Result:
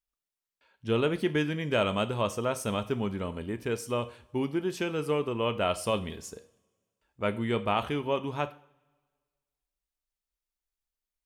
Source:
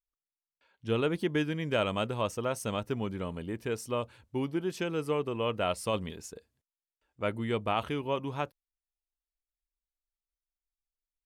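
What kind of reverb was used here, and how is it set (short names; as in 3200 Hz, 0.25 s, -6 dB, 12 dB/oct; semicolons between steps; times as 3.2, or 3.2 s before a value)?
two-slope reverb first 0.44 s, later 1.6 s, from -21 dB, DRR 10 dB; gain +2 dB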